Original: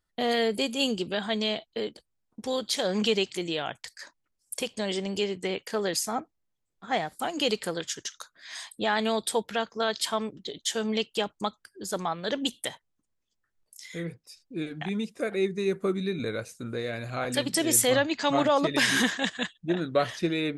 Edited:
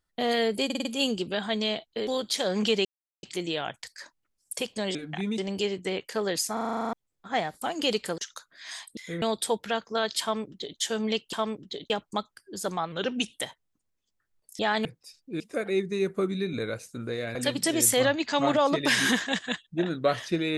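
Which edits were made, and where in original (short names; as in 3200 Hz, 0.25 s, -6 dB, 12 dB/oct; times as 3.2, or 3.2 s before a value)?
0.65 stutter 0.05 s, 5 plays
1.87–2.46 cut
3.24 insert silence 0.38 s
6.11 stutter in place 0.04 s, 10 plays
7.76–8.02 cut
8.81–9.07 swap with 13.83–14.08
10.07–10.64 copy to 11.18
12.2–12.57 speed 90%
14.63–15.06 move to 4.96
17.01–17.26 cut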